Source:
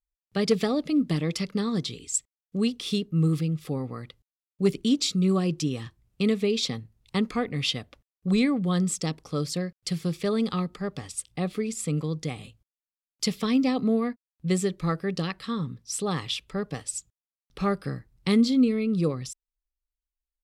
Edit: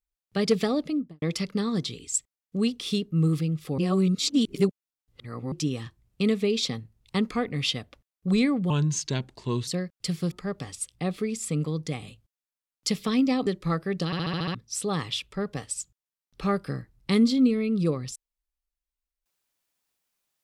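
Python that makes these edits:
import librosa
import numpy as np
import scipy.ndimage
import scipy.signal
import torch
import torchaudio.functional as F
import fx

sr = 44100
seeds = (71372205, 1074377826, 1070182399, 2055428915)

y = fx.studio_fade_out(x, sr, start_s=0.77, length_s=0.45)
y = fx.edit(y, sr, fx.reverse_span(start_s=3.78, length_s=1.74),
    fx.speed_span(start_s=8.7, length_s=0.8, speed=0.82),
    fx.cut(start_s=10.14, length_s=0.54),
    fx.cut(start_s=13.83, length_s=0.81),
    fx.stutter_over(start_s=15.23, slice_s=0.07, count=7), tone=tone)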